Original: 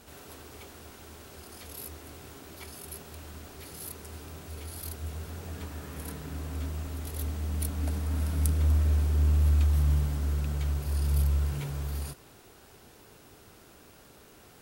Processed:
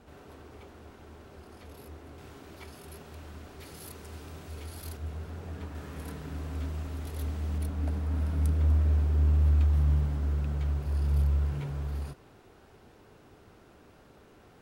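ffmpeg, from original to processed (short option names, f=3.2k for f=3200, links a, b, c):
-af "asetnsamples=n=441:p=0,asendcmd='2.18 lowpass f 2700;3.6 lowpass f 4800;4.97 lowpass f 1900;5.75 lowpass f 3500;7.58 lowpass f 1700',lowpass=f=1.3k:p=1"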